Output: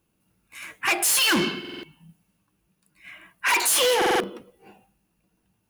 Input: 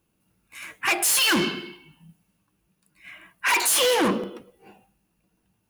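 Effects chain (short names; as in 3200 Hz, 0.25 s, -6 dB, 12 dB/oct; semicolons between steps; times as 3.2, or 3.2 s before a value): stuck buffer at 1.6/3.97, samples 2048, times 4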